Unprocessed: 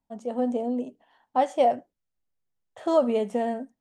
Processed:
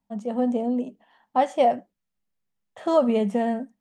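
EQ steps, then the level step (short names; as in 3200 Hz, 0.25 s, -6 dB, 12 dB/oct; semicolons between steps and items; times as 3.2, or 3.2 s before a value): bell 200 Hz +12 dB 0.35 oct; bell 1800 Hz +4 dB 2.2 oct; notch 1500 Hz, Q 21; 0.0 dB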